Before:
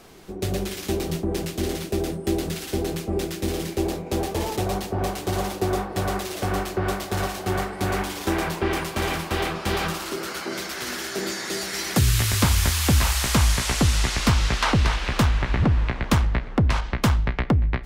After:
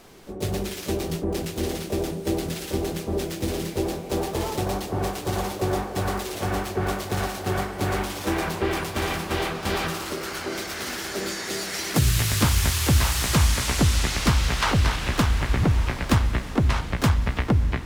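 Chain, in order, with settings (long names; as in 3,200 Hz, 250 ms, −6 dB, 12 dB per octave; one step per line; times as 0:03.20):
pitch-shifted copies added +3 semitones −12 dB, +7 semitones −12 dB
feedback delay with all-pass diffusion 1,250 ms, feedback 45%, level −14 dB
level −1.5 dB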